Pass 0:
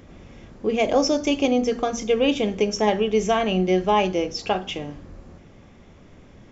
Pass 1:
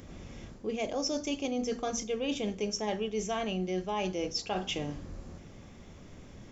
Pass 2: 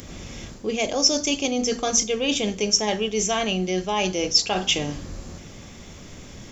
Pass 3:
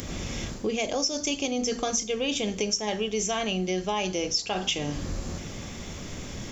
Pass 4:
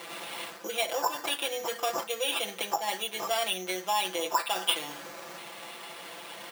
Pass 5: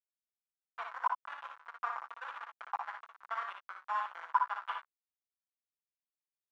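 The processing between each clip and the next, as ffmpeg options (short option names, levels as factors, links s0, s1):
-af "bass=f=250:g=2,treble=f=4000:g=8,areverse,acompressor=threshold=0.0447:ratio=6,areverse,volume=0.708"
-af "highshelf=f=2700:g=11,volume=2.37"
-af "acompressor=threshold=0.0355:ratio=6,volume=1.58"
-af "acrusher=samples=7:mix=1:aa=0.000001,highpass=670,aecho=1:1:5.9:1,volume=0.841"
-filter_complex "[0:a]acrusher=bits=3:mix=0:aa=0.000001,asuperpass=centerf=1200:order=4:qfactor=2,asplit=2[s0][s1];[s1]aecho=0:1:59|73:0.562|0.282[s2];[s0][s2]amix=inputs=2:normalize=0"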